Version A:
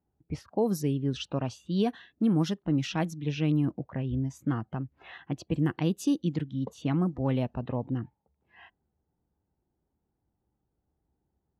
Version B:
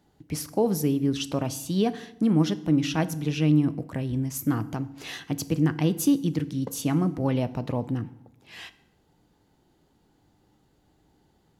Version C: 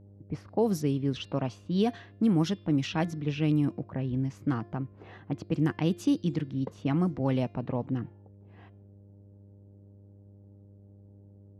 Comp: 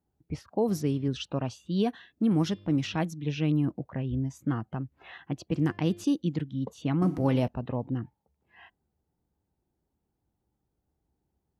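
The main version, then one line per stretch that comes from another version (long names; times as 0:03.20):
A
0:00.68–0:01.08: punch in from C
0:02.31–0:02.96: punch in from C
0:05.52–0:06.04: punch in from C
0:07.02–0:07.48: punch in from B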